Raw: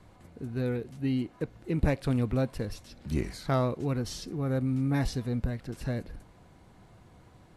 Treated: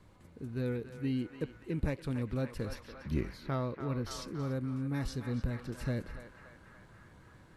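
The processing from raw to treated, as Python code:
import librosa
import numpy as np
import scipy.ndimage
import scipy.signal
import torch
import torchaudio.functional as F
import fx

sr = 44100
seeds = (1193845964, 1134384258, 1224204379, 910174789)

p1 = fx.peak_eq(x, sr, hz=8200.0, db=-14.0, octaves=0.96, at=(2.75, 4.11))
p2 = p1 + fx.echo_banded(p1, sr, ms=285, feedback_pct=76, hz=1400.0, wet_db=-7.5, dry=0)
p3 = fx.rider(p2, sr, range_db=3, speed_s=0.5)
p4 = fx.peak_eq(p3, sr, hz=720.0, db=-8.0, octaves=0.25)
y = p4 * librosa.db_to_amplitude(-5.0)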